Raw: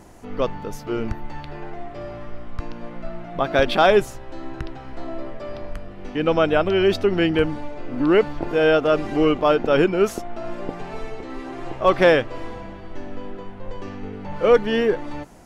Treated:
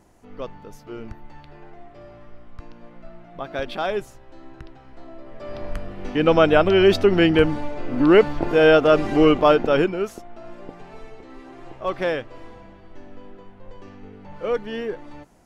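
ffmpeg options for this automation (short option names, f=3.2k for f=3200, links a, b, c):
-af "volume=3dB,afade=t=in:st=5.25:d=0.52:silence=0.223872,afade=t=out:st=9.43:d=0.65:silence=0.251189"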